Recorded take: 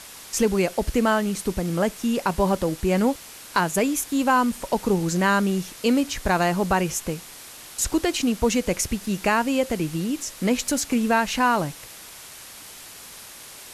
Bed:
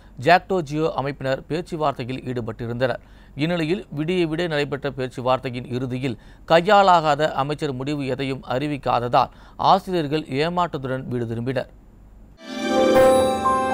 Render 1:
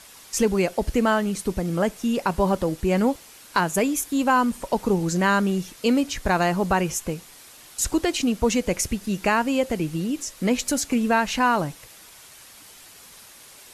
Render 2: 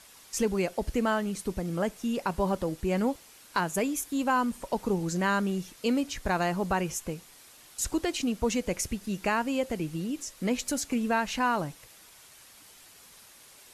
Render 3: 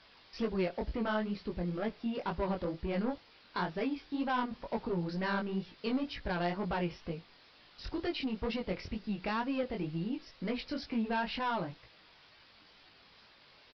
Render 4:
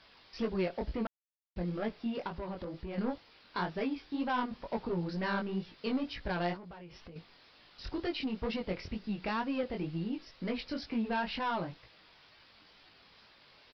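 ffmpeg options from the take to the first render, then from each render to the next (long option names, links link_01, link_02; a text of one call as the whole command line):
ffmpeg -i in.wav -af "afftdn=noise_reduction=6:noise_floor=-42" out.wav
ffmpeg -i in.wav -af "volume=-6.5dB" out.wav
ffmpeg -i in.wav -af "aresample=11025,asoftclip=type=tanh:threshold=-24.5dB,aresample=44100,flanger=delay=17.5:depth=5.8:speed=2.1" out.wav
ffmpeg -i in.wav -filter_complex "[0:a]asettb=1/sr,asplit=3[link_01][link_02][link_03];[link_01]atrim=end=2.274[link_04];[link_02]atrim=start=2.27:end=2.98,asetpts=PTS-STARTPTS,afade=type=in:duration=0.004:curve=qsin,afade=type=out:start_time=0.706:duration=0.004:curve=qsin,acompressor=threshold=-38dB:ratio=3:attack=3.2:release=140:knee=1:detection=peak[link_05];[link_03]atrim=start=2.976[link_06];[link_04][link_05]acrossfade=duration=0.004:curve1=hsin:curve2=qsin[link_07];[link_07][link_06]acrossfade=duration=0.004:curve1=qsin:curve2=hsin,asettb=1/sr,asplit=3[link_08][link_09][link_10];[link_08]atrim=end=6.564[link_11];[link_09]atrim=start=6.56:end=7.16,asetpts=PTS-STARTPTS,afade=type=in:duration=0.004:curve=qsin,afade=type=out:start_time=0.596:duration=0.004:curve=qsin,acompressor=threshold=-45dB:ratio=20:attack=3.2:release=140:knee=1:detection=peak[link_12];[link_10]atrim=start=7.156[link_13];[link_11][link_12]acrossfade=duration=0.004:curve1=hsin:curve2=qsin[link_14];[link_14][link_13]acrossfade=duration=0.004:curve1=qsin:curve2=hsin,asplit=3[link_15][link_16][link_17];[link_15]atrim=end=1.07,asetpts=PTS-STARTPTS,afade=type=out:start_time=1.066:duration=0.004:curve=hsin[link_18];[link_16]atrim=start=1.07:end=1.56,asetpts=PTS-STARTPTS,volume=0[link_19];[link_17]atrim=start=1.56,asetpts=PTS-STARTPTS,afade=type=in:duration=0.004:curve=hsin[link_20];[link_18][link_19][link_20]concat=n=3:v=0:a=1" out.wav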